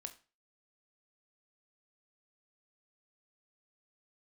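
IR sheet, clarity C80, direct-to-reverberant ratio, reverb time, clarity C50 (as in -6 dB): 19.5 dB, 7.0 dB, 0.35 s, 15.0 dB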